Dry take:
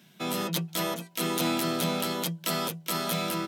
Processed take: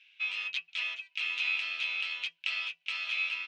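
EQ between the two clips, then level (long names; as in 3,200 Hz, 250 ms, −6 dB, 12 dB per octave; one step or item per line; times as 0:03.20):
four-pole ladder band-pass 2,700 Hz, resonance 80%
high-frequency loss of the air 130 metres
+9.0 dB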